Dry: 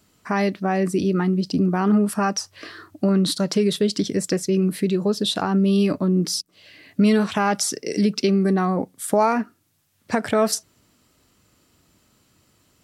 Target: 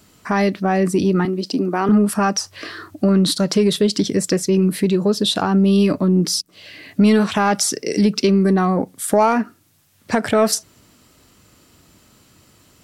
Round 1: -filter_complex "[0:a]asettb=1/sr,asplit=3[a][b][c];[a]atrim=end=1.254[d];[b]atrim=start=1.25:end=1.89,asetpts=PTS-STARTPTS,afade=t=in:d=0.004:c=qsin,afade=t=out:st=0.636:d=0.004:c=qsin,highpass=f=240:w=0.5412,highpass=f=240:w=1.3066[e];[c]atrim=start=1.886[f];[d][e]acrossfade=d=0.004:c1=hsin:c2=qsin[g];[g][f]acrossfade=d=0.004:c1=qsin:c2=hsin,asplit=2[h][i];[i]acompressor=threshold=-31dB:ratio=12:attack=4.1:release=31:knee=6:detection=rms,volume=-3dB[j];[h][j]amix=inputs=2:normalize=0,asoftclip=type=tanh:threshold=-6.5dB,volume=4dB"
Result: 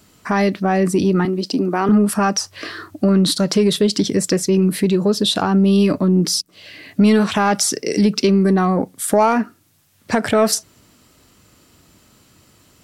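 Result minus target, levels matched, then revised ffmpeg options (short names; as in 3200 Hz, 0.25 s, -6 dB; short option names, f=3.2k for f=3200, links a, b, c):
compressor: peak gain reduction -10.5 dB
-filter_complex "[0:a]asettb=1/sr,asplit=3[a][b][c];[a]atrim=end=1.254[d];[b]atrim=start=1.25:end=1.89,asetpts=PTS-STARTPTS,afade=t=in:d=0.004:c=qsin,afade=t=out:st=0.636:d=0.004:c=qsin,highpass=f=240:w=0.5412,highpass=f=240:w=1.3066[e];[c]atrim=start=1.886[f];[d][e]acrossfade=d=0.004:c1=hsin:c2=qsin[g];[g][f]acrossfade=d=0.004:c1=qsin:c2=hsin,asplit=2[h][i];[i]acompressor=threshold=-42.5dB:ratio=12:attack=4.1:release=31:knee=6:detection=rms,volume=-3dB[j];[h][j]amix=inputs=2:normalize=0,asoftclip=type=tanh:threshold=-6.5dB,volume=4dB"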